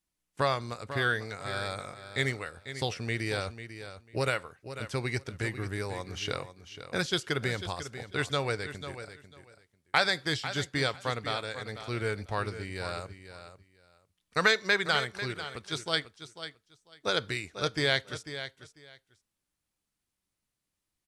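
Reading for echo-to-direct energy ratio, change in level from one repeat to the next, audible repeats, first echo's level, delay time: -11.5 dB, -15.0 dB, 2, -11.5 dB, 495 ms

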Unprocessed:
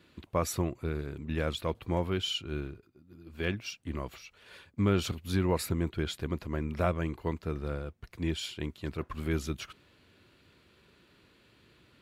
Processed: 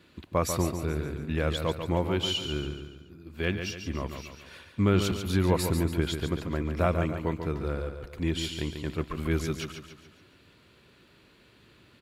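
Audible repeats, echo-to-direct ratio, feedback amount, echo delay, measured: 5, -6.5 dB, 46%, 142 ms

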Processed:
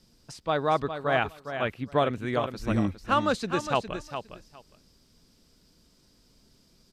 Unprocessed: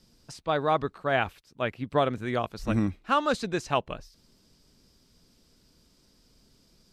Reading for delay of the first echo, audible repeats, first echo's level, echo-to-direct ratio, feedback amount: 409 ms, 2, -9.0 dB, -9.0 dB, 16%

